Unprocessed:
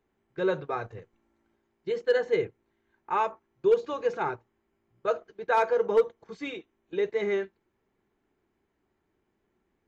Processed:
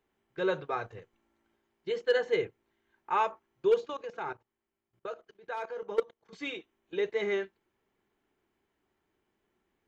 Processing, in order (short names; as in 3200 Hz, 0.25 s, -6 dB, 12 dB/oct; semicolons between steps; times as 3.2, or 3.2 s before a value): bell 3100 Hz +4 dB 0.37 oct; 3.84–6.33 level quantiser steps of 17 dB; low shelf 470 Hz -5.5 dB